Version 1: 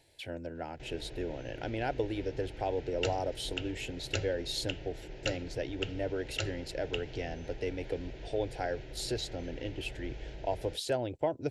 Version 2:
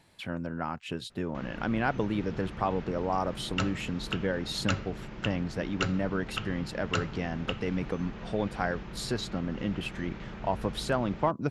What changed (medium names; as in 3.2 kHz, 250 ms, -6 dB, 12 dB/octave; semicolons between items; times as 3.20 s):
background: entry +0.55 s; master: remove static phaser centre 480 Hz, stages 4